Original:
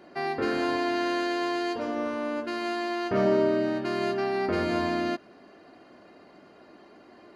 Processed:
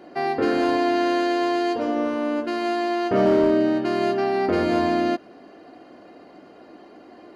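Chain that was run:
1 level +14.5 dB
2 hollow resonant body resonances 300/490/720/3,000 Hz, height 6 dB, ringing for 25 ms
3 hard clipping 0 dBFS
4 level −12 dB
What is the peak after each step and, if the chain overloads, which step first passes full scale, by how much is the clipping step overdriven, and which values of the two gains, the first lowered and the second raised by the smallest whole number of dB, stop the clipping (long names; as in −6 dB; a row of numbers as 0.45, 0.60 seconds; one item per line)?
+1.5, +4.5, 0.0, −12.0 dBFS
step 1, 4.5 dB
step 1 +9.5 dB, step 4 −7 dB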